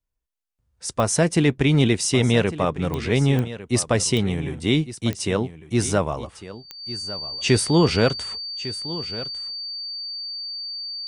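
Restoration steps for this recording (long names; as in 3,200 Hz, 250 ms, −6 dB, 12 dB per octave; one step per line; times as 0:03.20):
click removal
notch filter 4,600 Hz, Q 30
echo removal 1,152 ms −15 dB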